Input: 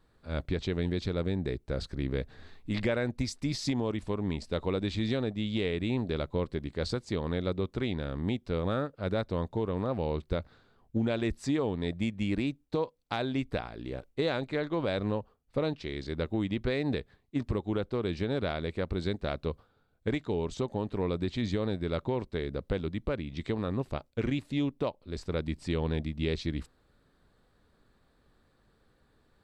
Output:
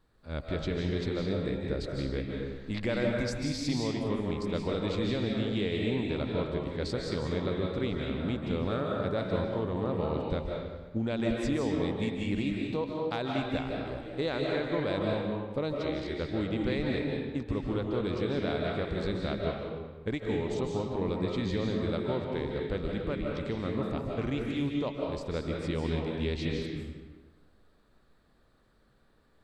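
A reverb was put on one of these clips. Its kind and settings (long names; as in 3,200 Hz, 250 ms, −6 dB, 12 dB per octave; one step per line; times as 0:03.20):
comb and all-pass reverb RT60 1.3 s, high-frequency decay 0.75×, pre-delay 115 ms, DRR −1 dB
level −2.5 dB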